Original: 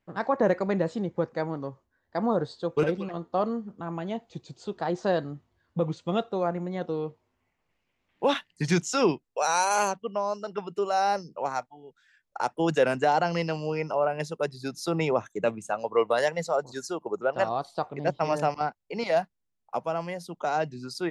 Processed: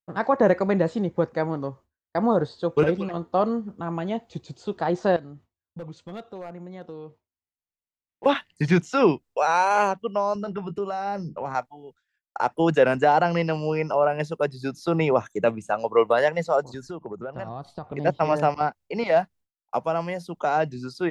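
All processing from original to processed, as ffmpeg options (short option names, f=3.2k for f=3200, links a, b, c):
-filter_complex "[0:a]asettb=1/sr,asplit=3[a][b][c];[a]atrim=end=5.164[d];[b]atrim=start=5.16:end=8.26,asetpts=PTS-STARTPTS,afade=t=in:d=0.004:c=qsin,afade=t=out:st=3.096:d=0.004:c=qsin,asoftclip=type=hard:threshold=-21dB,acompressor=threshold=-50dB:ratio=2:attack=3.2:release=140:knee=1:detection=peak[e];[c]atrim=start=8.256[f];[d][e]acrossfade=d=0.004:c1=hsin:c2=qsin[g];[g][f]acrossfade=d=0.004:c1=qsin:c2=hsin,asettb=1/sr,asplit=3[h][i][j];[h]atrim=end=10.354[k];[i]atrim=start=10.35:end=11.55,asetpts=PTS-STARTPTS,afade=t=in:d=0.004:c=qsin,afade=t=out:st=1.196:d=0.004:c=qsin,bass=f=250:g=11,treble=f=4k:g=-10,acompressor=threshold=-32dB:ratio=3:attack=3.2:release=140:knee=1:detection=peak,asplit=2[l][m];[m]adelay=20,volume=-13dB[n];[l][n]amix=inputs=2:normalize=0,atrim=end_sample=52920[o];[j]atrim=start=11.546[p];[k][o]acrossfade=d=0.004:c1=hsin:c2=qsin[q];[q][p]acrossfade=d=0.004:c1=qsin:c2=hsin,asettb=1/sr,asplit=3[r][s][t];[r]atrim=end=16.744[u];[s]atrim=start=16.74:end=17.92,asetpts=PTS-STARTPTS,afade=t=in:d=0.004:c=qsin,afade=t=out:st=1.176:d=0.004:c=qsin,bass=f=250:g=13,treble=f=4k:g=-8,acompressor=threshold=-37dB:ratio=4:attack=3.2:release=140:knee=1:detection=peak[v];[t]atrim=start=17.916[w];[u][v]acrossfade=d=0.004:c1=hsin:c2=qsin[x];[x][w]acrossfade=d=0.004:c1=qsin:c2=hsin,acrossover=split=3300[y][z];[z]acompressor=threshold=-52dB:ratio=4:attack=1:release=60[aa];[y][aa]amix=inputs=2:normalize=0,agate=range=-33dB:threshold=-49dB:ratio=3:detection=peak,equalizer=f=77:t=o:w=0.43:g=8,volume=4.5dB"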